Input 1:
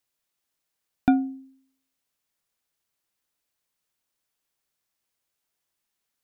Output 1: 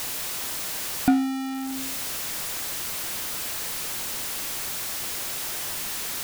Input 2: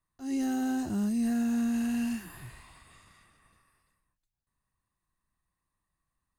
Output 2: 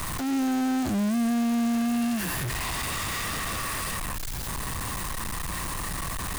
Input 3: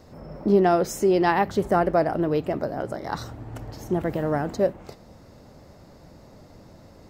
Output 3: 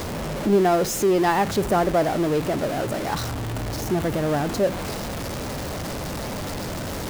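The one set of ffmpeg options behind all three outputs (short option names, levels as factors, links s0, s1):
-af "aeval=exprs='val(0)+0.5*0.0708*sgn(val(0))':c=same,volume=0.841"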